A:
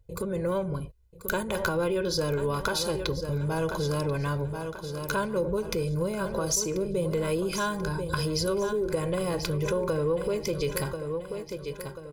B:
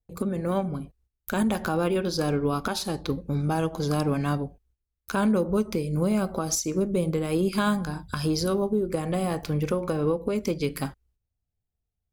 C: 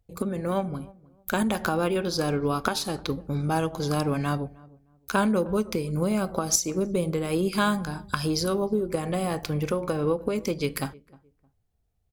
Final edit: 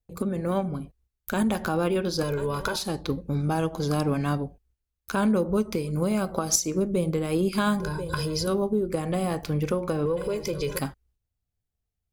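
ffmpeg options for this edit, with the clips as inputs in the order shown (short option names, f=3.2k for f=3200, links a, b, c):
-filter_complex "[0:a]asplit=3[a][b][c];[1:a]asplit=5[d][e][f][g][h];[d]atrim=end=2.232[i];[a]atrim=start=2.228:end=2.762[j];[e]atrim=start=2.758:end=5.732[k];[2:a]atrim=start=5.728:end=6.672[l];[f]atrim=start=6.668:end=7.802[m];[b]atrim=start=7.798:end=8.472[n];[g]atrim=start=8.468:end=10.062[o];[c]atrim=start=10.058:end=10.792[p];[h]atrim=start=10.788[q];[i][j]acrossfade=d=0.004:c1=hsin:c2=hsin[r];[r][k]acrossfade=d=0.004:c1=hsin:c2=hsin[s];[s][l]acrossfade=d=0.004:c1=hsin:c2=hsin[t];[t][m]acrossfade=d=0.004:c1=hsin:c2=hsin[u];[u][n]acrossfade=d=0.004:c1=hsin:c2=hsin[v];[v][o]acrossfade=d=0.004:c1=hsin:c2=hsin[w];[w][p]acrossfade=d=0.004:c1=hsin:c2=hsin[x];[x][q]acrossfade=d=0.004:c1=hsin:c2=hsin"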